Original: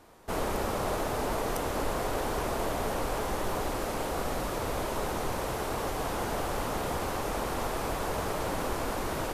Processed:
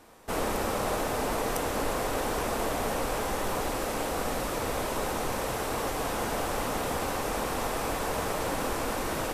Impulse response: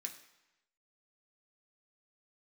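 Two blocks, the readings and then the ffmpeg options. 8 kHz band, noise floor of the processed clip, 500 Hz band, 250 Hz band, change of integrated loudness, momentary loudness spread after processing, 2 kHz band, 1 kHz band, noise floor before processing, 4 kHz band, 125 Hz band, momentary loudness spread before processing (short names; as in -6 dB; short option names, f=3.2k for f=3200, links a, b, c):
+4.0 dB, -32 dBFS, +1.5 dB, +1.5 dB, +1.5 dB, 1 LU, +3.0 dB, +1.5 dB, -34 dBFS, +3.0 dB, -1.0 dB, 2 LU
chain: -filter_complex "[0:a]asplit=2[a][b];[1:a]atrim=start_sample=2205[c];[b][c]afir=irnorm=-1:irlink=0,volume=-3dB[d];[a][d]amix=inputs=2:normalize=0"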